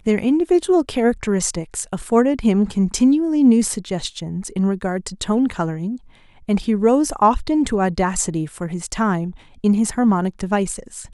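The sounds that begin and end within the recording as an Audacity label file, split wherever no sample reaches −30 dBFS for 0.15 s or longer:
6.490000	9.310000	sound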